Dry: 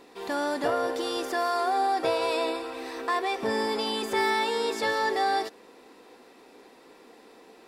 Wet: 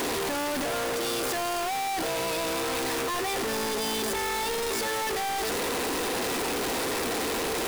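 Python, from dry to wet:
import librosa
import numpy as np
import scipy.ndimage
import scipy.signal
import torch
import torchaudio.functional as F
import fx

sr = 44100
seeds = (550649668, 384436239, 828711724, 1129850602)

y = np.sign(x) * np.sqrt(np.mean(np.square(x)))
y = fx.peak_eq(y, sr, hz=10000.0, db=2.5, octaves=0.56)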